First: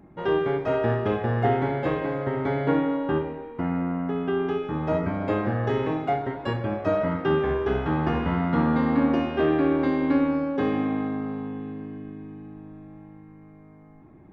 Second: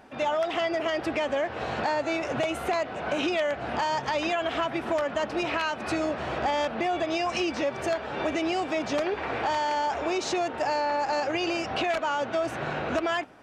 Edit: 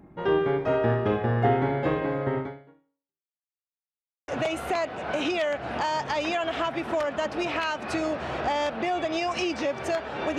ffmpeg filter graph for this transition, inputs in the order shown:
ffmpeg -i cue0.wav -i cue1.wav -filter_complex "[0:a]apad=whole_dur=10.38,atrim=end=10.38,asplit=2[link_01][link_02];[link_01]atrim=end=3.36,asetpts=PTS-STARTPTS,afade=type=out:start_time=2.38:duration=0.98:curve=exp[link_03];[link_02]atrim=start=3.36:end=4.28,asetpts=PTS-STARTPTS,volume=0[link_04];[1:a]atrim=start=2.26:end=8.36,asetpts=PTS-STARTPTS,afade=type=in:duration=0.004:curve=hsin[link_05];[link_03][link_04][link_05]concat=n=3:v=0:a=1" out.wav

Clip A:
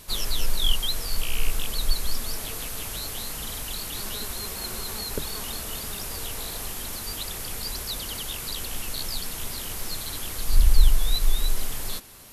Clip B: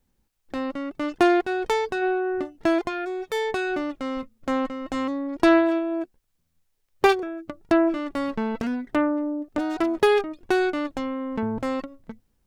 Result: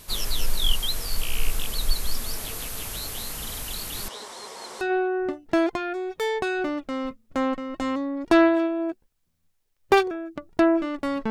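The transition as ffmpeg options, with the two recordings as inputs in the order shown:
ffmpeg -i cue0.wav -i cue1.wav -filter_complex "[0:a]asettb=1/sr,asplit=3[link_01][link_02][link_03];[link_01]atrim=end=4.084[link_04];[link_02]atrim=start=4.08:end=4.81,asetpts=PTS-STARTPTS,afade=type=in:duration=0.004:curve=qsin,afade=type=out:start_time=0.726:duration=0.004:curve=qsin,highpass=410,equalizer=frequency=490:width_type=q:width=4:gain=4,equalizer=frequency=930:width_type=q:width=4:gain=6,equalizer=frequency=1500:width_type=q:width=4:gain=-5,equalizer=frequency=2600:width_type=q:width=4:gain=-9,equalizer=frequency=4200:width_type=q:width=4:gain=-6,equalizer=frequency=6700:width_type=q:width=4:gain=-5,lowpass=frequency=7500:width=0.5412,lowpass=frequency=7500:width=1.3066[link_05];[link_03]atrim=start=4.806[link_06];[link_04][link_05]acrossfade=duration=0.004:curve1=hsin:curve2=qsin[link_07];[link_07][link_06]acrossfade=duration=0.004:curve1=qsin:curve2=hsin,apad=whole_dur=11.3,atrim=end=11.3,atrim=end=4.812[link_08];[1:a]atrim=start=1.928:end=8.42[link_09];[link_08][link_09]acrossfade=duration=0.004:curve1=hsin:curve2=hsin" out.wav

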